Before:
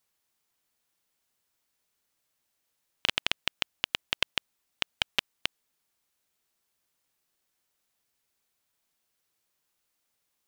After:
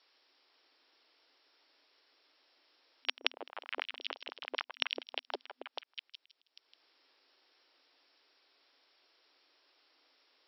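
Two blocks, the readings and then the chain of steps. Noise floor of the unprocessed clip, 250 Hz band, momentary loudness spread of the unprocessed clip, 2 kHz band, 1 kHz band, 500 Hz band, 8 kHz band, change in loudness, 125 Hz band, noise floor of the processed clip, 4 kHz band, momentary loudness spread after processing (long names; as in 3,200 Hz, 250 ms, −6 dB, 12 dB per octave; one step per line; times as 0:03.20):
−79 dBFS, −4.5 dB, 7 LU, −7.0 dB, −3.5 dB, 0.0 dB, below −30 dB, −8.0 dB, below −40 dB, −83 dBFS, −7.5 dB, 13 LU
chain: echo through a band-pass that steps 160 ms, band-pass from 400 Hz, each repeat 0.7 octaves, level 0 dB
volume swells 433 ms
high-shelf EQ 4,100 Hz +6.5 dB
brick-wall band-pass 250–5,600 Hz
level +11 dB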